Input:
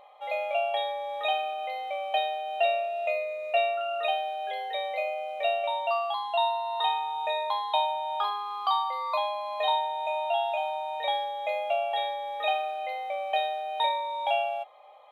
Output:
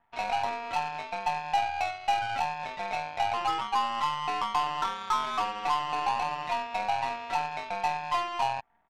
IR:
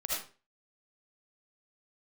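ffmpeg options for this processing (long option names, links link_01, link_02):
-filter_complex "[0:a]asplit=2[link_01][link_02];[link_02]alimiter=level_in=0.5dB:limit=-24dB:level=0:latency=1,volume=-0.5dB,volume=-2.5dB[link_03];[link_01][link_03]amix=inputs=2:normalize=0,highpass=frequency=310:width_type=q:width=0.5412,highpass=frequency=310:width_type=q:width=1.307,lowpass=frequency=2400:width_type=q:width=0.5176,lowpass=frequency=2400:width_type=q:width=0.7071,lowpass=frequency=2400:width_type=q:width=1.932,afreqshift=120,asoftclip=type=tanh:threshold=-21dB,aeval=exprs='0.0891*(cos(1*acos(clip(val(0)/0.0891,-1,1)))-cos(1*PI/2))+0.00891*(cos(2*acos(clip(val(0)/0.0891,-1,1)))-cos(2*PI/2))+0.0316*(cos(3*acos(clip(val(0)/0.0891,-1,1)))-cos(3*PI/2))+0.00158*(cos(6*acos(clip(val(0)/0.0891,-1,1)))-cos(6*PI/2))+0.00316*(cos(8*acos(clip(val(0)/0.0891,-1,1)))-cos(8*PI/2))':channel_layout=same,atempo=1.7,volume=2dB"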